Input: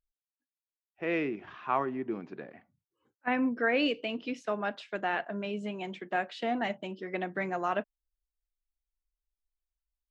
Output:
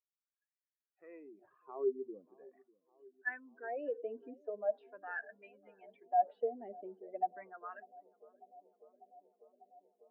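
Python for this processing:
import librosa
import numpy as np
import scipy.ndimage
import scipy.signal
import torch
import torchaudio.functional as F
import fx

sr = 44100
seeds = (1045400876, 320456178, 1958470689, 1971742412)

y = fx.spec_expand(x, sr, power=2.0)
y = fx.wah_lfo(y, sr, hz=0.41, low_hz=400.0, high_hz=1900.0, q=12.0)
y = fx.echo_bbd(y, sr, ms=596, stages=4096, feedback_pct=83, wet_db=-24.0)
y = y * librosa.db_to_amplitude(5.5)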